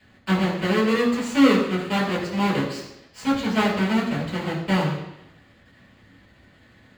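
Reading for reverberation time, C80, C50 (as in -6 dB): 0.85 s, 7.5 dB, 5.5 dB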